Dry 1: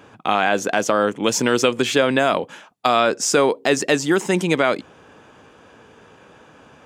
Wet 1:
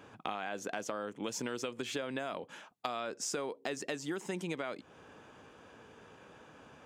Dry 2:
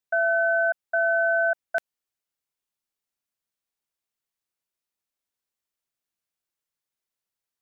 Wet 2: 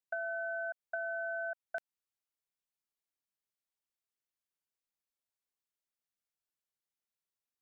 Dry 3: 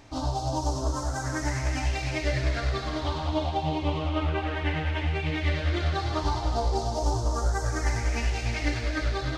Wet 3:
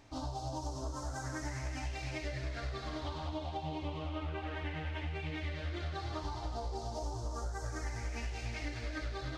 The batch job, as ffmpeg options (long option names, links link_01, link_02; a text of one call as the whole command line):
ffmpeg -i in.wav -af "acompressor=threshold=-27dB:ratio=6,volume=-8dB" out.wav